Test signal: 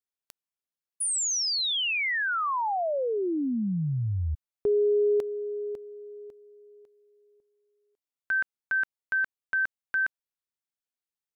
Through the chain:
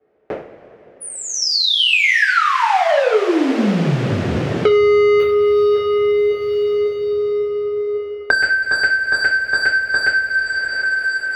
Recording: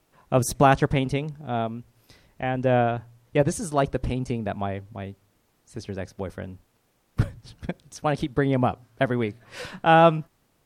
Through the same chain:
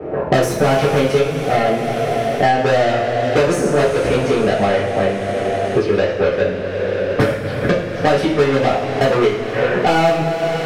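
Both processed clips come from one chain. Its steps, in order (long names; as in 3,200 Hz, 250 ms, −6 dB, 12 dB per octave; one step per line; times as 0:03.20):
low-pass that shuts in the quiet parts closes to 540 Hz, open at −21 dBFS
octave-band graphic EQ 250/500/1,000/2,000/4,000/8,000 Hz −4/+8/−11/+3/−7/−7 dB
mid-hump overdrive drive 29 dB, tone 4,300 Hz, clips at −6 dBFS
coupled-rooms reverb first 0.46 s, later 4.1 s, from −17 dB, DRR −10 dB
multiband upward and downward compressor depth 100%
level −10 dB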